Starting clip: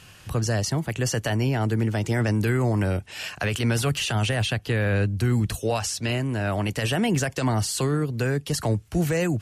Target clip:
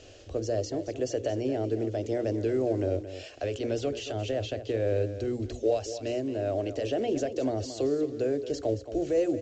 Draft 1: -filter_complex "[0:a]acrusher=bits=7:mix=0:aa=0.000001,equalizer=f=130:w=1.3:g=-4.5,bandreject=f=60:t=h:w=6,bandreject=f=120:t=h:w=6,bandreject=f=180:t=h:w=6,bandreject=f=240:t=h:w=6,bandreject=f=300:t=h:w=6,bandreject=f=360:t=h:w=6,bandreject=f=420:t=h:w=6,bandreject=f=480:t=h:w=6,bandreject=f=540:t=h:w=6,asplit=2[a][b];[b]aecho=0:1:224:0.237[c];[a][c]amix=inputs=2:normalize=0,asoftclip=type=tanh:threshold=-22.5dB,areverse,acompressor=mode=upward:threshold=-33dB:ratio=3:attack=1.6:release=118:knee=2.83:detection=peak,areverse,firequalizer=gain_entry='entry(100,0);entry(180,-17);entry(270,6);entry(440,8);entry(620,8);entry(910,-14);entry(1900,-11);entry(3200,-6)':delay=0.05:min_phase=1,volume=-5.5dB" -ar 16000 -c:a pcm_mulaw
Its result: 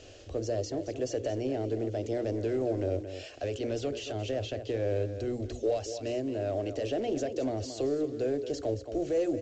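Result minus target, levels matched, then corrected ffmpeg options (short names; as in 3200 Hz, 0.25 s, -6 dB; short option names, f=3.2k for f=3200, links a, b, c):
soft clip: distortion +14 dB
-filter_complex "[0:a]acrusher=bits=7:mix=0:aa=0.000001,equalizer=f=130:w=1.3:g=-4.5,bandreject=f=60:t=h:w=6,bandreject=f=120:t=h:w=6,bandreject=f=180:t=h:w=6,bandreject=f=240:t=h:w=6,bandreject=f=300:t=h:w=6,bandreject=f=360:t=h:w=6,bandreject=f=420:t=h:w=6,bandreject=f=480:t=h:w=6,bandreject=f=540:t=h:w=6,asplit=2[a][b];[b]aecho=0:1:224:0.237[c];[a][c]amix=inputs=2:normalize=0,asoftclip=type=tanh:threshold=-13dB,areverse,acompressor=mode=upward:threshold=-33dB:ratio=3:attack=1.6:release=118:knee=2.83:detection=peak,areverse,firequalizer=gain_entry='entry(100,0);entry(180,-17);entry(270,6);entry(440,8);entry(620,8);entry(910,-14);entry(1900,-11);entry(3200,-6)':delay=0.05:min_phase=1,volume=-5.5dB" -ar 16000 -c:a pcm_mulaw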